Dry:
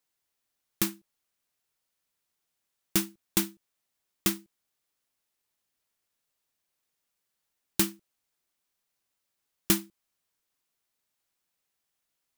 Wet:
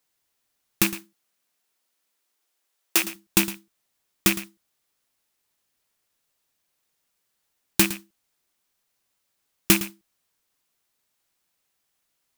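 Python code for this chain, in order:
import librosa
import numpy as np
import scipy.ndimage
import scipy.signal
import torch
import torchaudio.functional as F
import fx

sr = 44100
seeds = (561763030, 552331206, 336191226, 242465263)

p1 = fx.rattle_buzz(x, sr, strikes_db=-36.0, level_db=-19.0)
p2 = fx.highpass(p1, sr, hz=fx.line((0.93, 110.0), (3.03, 390.0)), slope=24, at=(0.93, 3.03), fade=0.02)
p3 = p2 + fx.echo_single(p2, sr, ms=111, db=-14.5, dry=0)
y = p3 * 10.0 ** (6.0 / 20.0)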